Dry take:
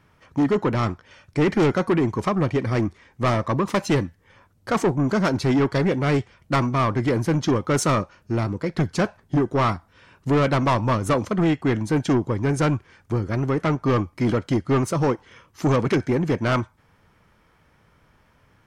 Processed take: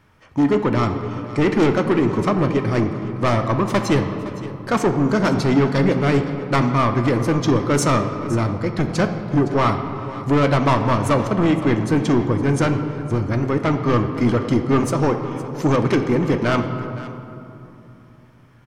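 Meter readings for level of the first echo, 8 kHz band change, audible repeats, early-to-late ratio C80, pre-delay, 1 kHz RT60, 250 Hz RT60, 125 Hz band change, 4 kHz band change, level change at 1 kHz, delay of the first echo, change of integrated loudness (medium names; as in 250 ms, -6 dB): -16.5 dB, +2.5 dB, 1, 8.0 dB, 3 ms, 2.9 s, 3.7 s, +3.0 dB, +2.5 dB, +3.5 dB, 514 ms, +3.0 dB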